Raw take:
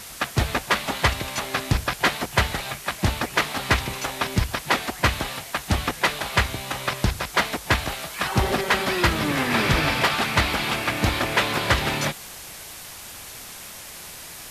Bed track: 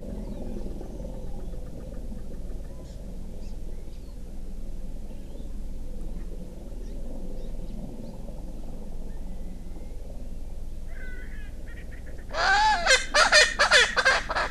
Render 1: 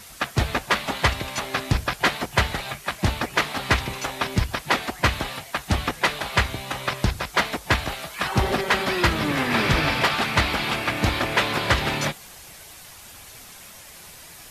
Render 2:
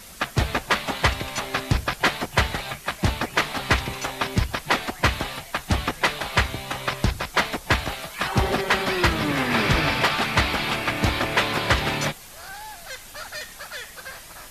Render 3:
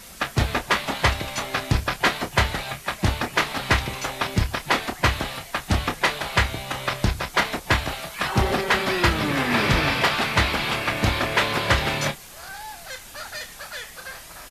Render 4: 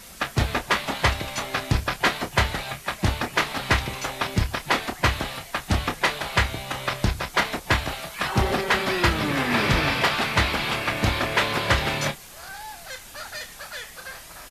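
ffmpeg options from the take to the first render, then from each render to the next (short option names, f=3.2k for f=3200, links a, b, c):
-af "afftdn=nr=6:nf=-40"
-filter_complex "[1:a]volume=-18dB[a];[0:a][a]amix=inputs=2:normalize=0"
-filter_complex "[0:a]asplit=2[a][b];[b]adelay=29,volume=-9.5dB[c];[a][c]amix=inputs=2:normalize=0"
-af "volume=-1dB"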